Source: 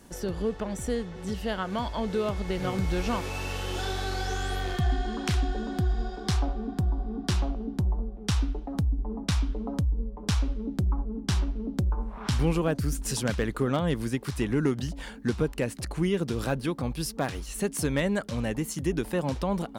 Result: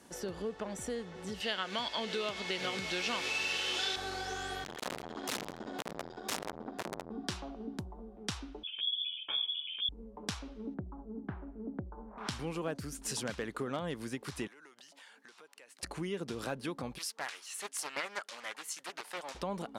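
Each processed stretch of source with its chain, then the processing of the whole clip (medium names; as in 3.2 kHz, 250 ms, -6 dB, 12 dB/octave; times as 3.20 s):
1.40–3.96 s: frequency weighting D + delay 605 ms -16.5 dB
4.64–7.12 s: integer overflow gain 22.5 dB + transformer saturation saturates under 550 Hz
8.63–9.89 s: static phaser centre 950 Hz, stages 8 + frequency inversion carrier 3.4 kHz + three-phase chorus
10.74–12.18 s: low-pass 1.5 kHz 24 dB/octave + peaking EQ 1.1 kHz -5.5 dB 0.59 oct
14.47–15.83 s: Bessel high-pass 970 Hz + compression 8:1, threshold -50 dBFS
16.98–19.35 s: high-pass 1.1 kHz + loudspeaker Doppler distortion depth 0.48 ms
whole clip: Bessel low-pass 11 kHz, order 2; compression 2.5:1, threshold -30 dBFS; high-pass 330 Hz 6 dB/octave; trim -2 dB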